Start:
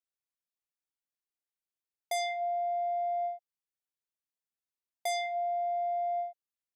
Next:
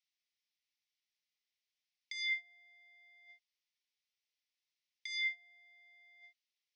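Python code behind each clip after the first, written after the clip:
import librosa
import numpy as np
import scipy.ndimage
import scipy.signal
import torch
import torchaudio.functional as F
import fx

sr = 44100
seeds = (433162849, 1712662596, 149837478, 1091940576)

y = fx.over_compress(x, sr, threshold_db=-35.0, ratio=-0.5)
y = scipy.signal.sosfilt(scipy.signal.ellip(3, 1.0, 60, [2000.0, 5700.0], 'bandpass', fs=sr, output='sos'), y)
y = F.gain(torch.from_numpy(y), 5.0).numpy()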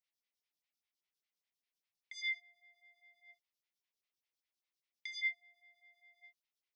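y = fx.stagger_phaser(x, sr, hz=5.0)
y = F.gain(torch.from_numpy(y), 1.5).numpy()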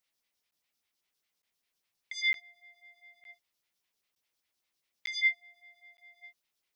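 y = fx.buffer_crackle(x, sr, first_s=0.51, period_s=0.91, block=512, kind='zero')
y = F.gain(torch.from_numpy(y), 9.0).numpy()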